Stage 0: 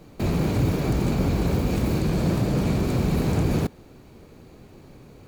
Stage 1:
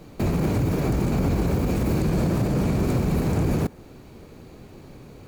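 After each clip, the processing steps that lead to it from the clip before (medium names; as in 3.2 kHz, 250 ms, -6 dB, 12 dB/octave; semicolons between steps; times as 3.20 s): peak limiter -17.5 dBFS, peak gain reduction 6 dB; dynamic bell 3.7 kHz, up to -5 dB, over -55 dBFS, Q 1.3; trim +3 dB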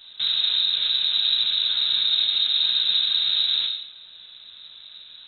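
gated-style reverb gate 260 ms falling, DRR 1 dB; frequency inversion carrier 3.9 kHz; trim -3.5 dB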